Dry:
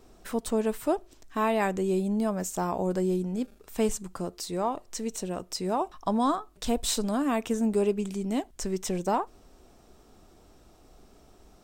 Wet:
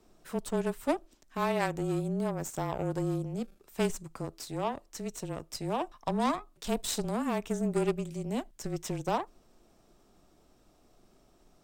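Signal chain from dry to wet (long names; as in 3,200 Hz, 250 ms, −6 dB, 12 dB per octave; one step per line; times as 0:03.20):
harmonic generator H 3 −15 dB, 8 −27 dB, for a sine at −14 dBFS
frequency shifter −26 Hz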